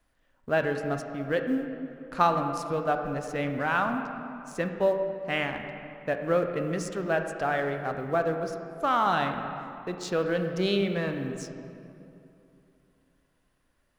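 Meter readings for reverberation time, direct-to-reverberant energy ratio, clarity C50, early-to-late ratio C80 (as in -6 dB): 2.8 s, 5.0 dB, 6.0 dB, 7.0 dB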